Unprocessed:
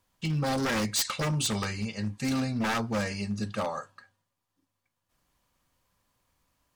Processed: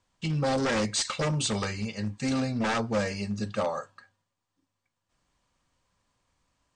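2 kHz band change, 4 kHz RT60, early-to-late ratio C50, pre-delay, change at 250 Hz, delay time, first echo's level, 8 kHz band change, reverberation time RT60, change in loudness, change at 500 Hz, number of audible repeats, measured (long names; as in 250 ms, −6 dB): 0.0 dB, no reverb audible, no reverb audible, no reverb audible, +0.5 dB, no echo audible, no echo audible, −0.5 dB, no reverb audible, +1.0 dB, +4.0 dB, no echo audible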